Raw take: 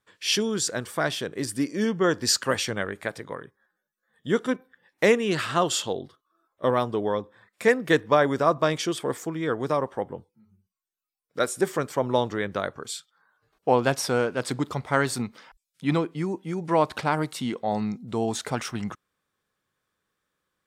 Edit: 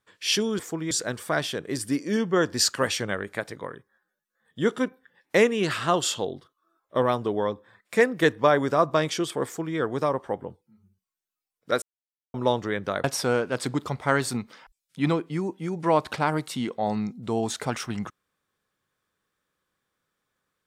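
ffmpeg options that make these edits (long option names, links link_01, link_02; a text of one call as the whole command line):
ffmpeg -i in.wav -filter_complex "[0:a]asplit=6[link_01][link_02][link_03][link_04][link_05][link_06];[link_01]atrim=end=0.592[link_07];[link_02]atrim=start=9.128:end=9.452[link_08];[link_03]atrim=start=0.588:end=11.5,asetpts=PTS-STARTPTS,afade=type=out:start_time=10.908:duration=0.004:curve=hsin[link_09];[link_04]atrim=start=11.5:end=12.02,asetpts=PTS-STARTPTS,volume=0[link_10];[link_05]atrim=start=12.02:end=12.722,asetpts=PTS-STARTPTS,afade=type=in:duration=0.004:curve=hsin[link_11];[link_06]atrim=start=13.888[link_12];[link_07][link_08]acrossfade=duration=0.004:curve1=hsin:curve2=hsin[link_13];[link_09][link_10][link_11]concat=n=3:v=0:a=1[link_14];[link_13][link_14]acrossfade=duration=0.004:curve1=hsin:curve2=hsin[link_15];[link_15][link_12]acrossfade=duration=0.004:curve1=hsin:curve2=hsin" out.wav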